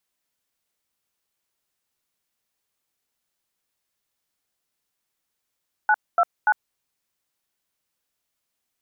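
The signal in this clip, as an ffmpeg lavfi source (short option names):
-f lavfi -i "aevalsrc='0.141*clip(min(mod(t,0.29),0.053-mod(t,0.29))/0.002,0,1)*(eq(floor(t/0.29),0)*(sin(2*PI*852*mod(t,0.29))+sin(2*PI*1477*mod(t,0.29)))+eq(floor(t/0.29),1)*(sin(2*PI*697*mod(t,0.29))+sin(2*PI*1336*mod(t,0.29)))+eq(floor(t/0.29),2)*(sin(2*PI*852*mod(t,0.29))+sin(2*PI*1477*mod(t,0.29))))':d=0.87:s=44100"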